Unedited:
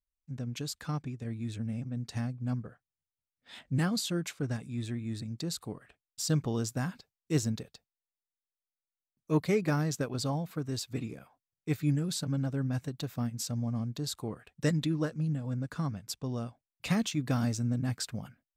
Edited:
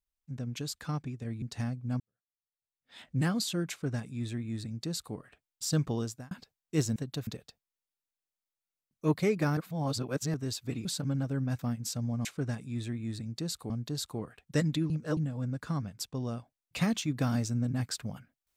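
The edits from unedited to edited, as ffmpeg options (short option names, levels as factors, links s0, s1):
-filter_complex "[0:a]asplit=14[s0][s1][s2][s3][s4][s5][s6][s7][s8][s9][s10][s11][s12][s13];[s0]atrim=end=1.422[s14];[s1]atrim=start=1.988:end=2.57,asetpts=PTS-STARTPTS,afade=t=out:st=0.578:d=0.004:c=hsin[s15];[s2]atrim=start=2.57:end=6.88,asetpts=PTS-STARTPTS,afade=t=in:d=1.12:c=qua,afade=t=out:st=3.95:d=0.36[s16];[s3]atrim=start=6.88:end=7.532,asetpts=PTS-STARTPTS,afade=t=in:d=0.004:c=hsin[s17];[s4]atrim=start=12.818:end=13.132[s18];[s5]atrim=start=7.528:end=9.832[s19];[s6]atrim=start=9.828:end=10.602,asetpts=PTS-STARTPTS,areverse[s20];[s7]atrim=start=10.598:end=11.112[s21];[s8]atrim=start=12.078:end=12.822[s22];[s9]atrim=start=13.128:end=13.792[s23];[s10]atrim=start=4.268:end=5.722[s24];[s11]atrim=start=13.788:end=14.992[s25];[s12]atrim=start=14.988:end=15.262,asetpts=PTS-STARTPTS,areverse[s26];[s13]atrim=start=15.258[s27];[s15][s16][s17]concat=n=3:v=0:a=1[s28];[s14][s28]acrossfade=d=0.004:c1=hsin:c2=hsin[s29];[s29][s18]acrossfade=d=0.004:c1=hsin:c2=hsin[s30];[s30][s19]acrossfade=d=0.004:c1=hsin:c2=hsin[s31];[s31][s20]acrossfade=d=0.004:c1=hsin:c2=hsin[s32];[s32][s21]acrossfade=d=0.004:c1=hsin:c2=hsin[s33];[s33][s22]acrossfade=d=0.004:c1=hsin:c2=hsin[s34];[s34][s23]acrossfade=d=0.004:c1=hsin:c2=hsin[s35];[s35][s24]acrossfade=d=0.004:c1=hsin:c2=hsin[s36];[s36][s25]acrossfade=d=0.004:c1=hsin:c2=hsin[s37];[s37][s26]acrossfade=d=0.004:c1=hsin:c2=hsin[s38];[s38][s27]acrossfade=d=0.004:c1=hsin:c2=hsin"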